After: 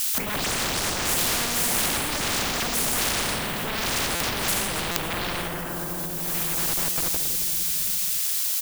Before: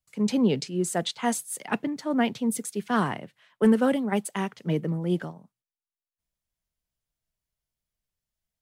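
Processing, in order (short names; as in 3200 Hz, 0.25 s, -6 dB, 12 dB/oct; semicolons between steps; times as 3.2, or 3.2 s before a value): spectral delay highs late, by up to 0.227 s; in parallel at -0.5 dB: limiter -20 dBFS, peak gain reduction 9.5 dB; on the sum: shoebox room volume 1000 m³, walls mixed, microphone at 8.2 m; requantised 8-bit, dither none; sine folder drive 12 dB, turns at 0 dBFS; low shelf 460 Hz +10 dB; added noise violet -27 dBFS; low shelf 140 Hz +10.5 dB; compressor 6:1, threshold -11 dBFS, peak gain reduction 21 dB; on a send: feedback echo 0.274 s, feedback 49%, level -19 dB; on the sum: stuck buffer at 4.15/4.91/6.91, samples 256, times 8; spectral compressor 4:1; gain -1 dB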